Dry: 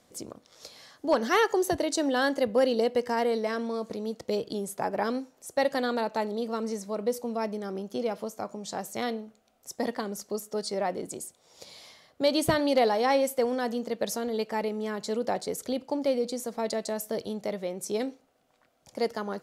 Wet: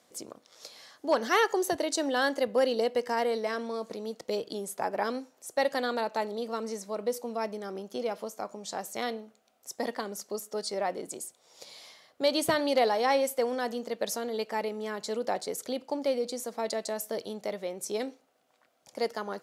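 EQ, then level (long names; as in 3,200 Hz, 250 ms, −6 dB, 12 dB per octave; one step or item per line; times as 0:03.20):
high-pass filter 370 Hz 6 dB per octave
0.0 dB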